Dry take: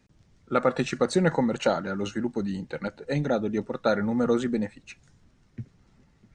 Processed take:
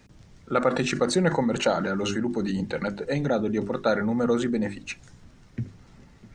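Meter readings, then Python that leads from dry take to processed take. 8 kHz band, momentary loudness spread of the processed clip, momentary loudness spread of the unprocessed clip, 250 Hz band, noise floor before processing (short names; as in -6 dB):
+5.5 dB, 14 LU, 11 LU, +1.5 dB, -63 dBFS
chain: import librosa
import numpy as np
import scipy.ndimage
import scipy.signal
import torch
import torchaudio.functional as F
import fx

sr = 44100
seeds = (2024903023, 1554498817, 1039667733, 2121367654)

p1 = fx.hum_notches(x, sr, base_hz=50, count=8)
p2 = fx.over_compress(p1, sr, threshold_db=-36.0, ratio=-1.0)
y = p1 + (p2 * 10.0 ** (-1.5 / 20.0))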